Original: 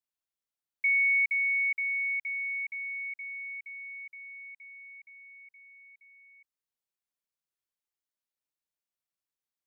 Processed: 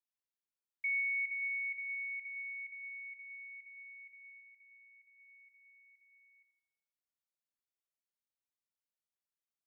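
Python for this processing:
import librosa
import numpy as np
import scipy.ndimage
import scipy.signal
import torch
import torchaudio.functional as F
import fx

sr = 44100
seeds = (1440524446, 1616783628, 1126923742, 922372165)

y = fx.lowpass(x, sr, hz=2000.0, slope=6, at=(4.32, 5.2))
y = fx.echo_feedback(y, sr, ms=83, feedback_pct=51, wet_db=-10)
y = y * librosa.db_to_amplitude(-9.0)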